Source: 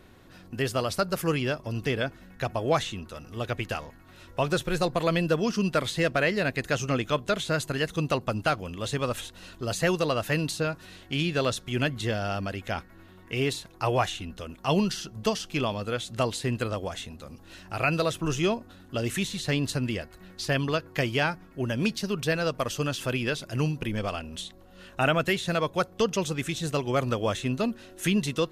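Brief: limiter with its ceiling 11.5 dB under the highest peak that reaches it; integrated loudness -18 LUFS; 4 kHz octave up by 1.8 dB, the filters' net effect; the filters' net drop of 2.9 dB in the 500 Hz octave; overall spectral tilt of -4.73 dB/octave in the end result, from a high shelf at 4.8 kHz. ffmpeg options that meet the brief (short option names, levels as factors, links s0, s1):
-af "equalizer=f=500:t=o:g=-3.5,equalizer=f=4000:t=o:g=6,highshelf=f=4800:g=-8,volume=7.08,alimiter=limit=0.422:level=0:latency=1"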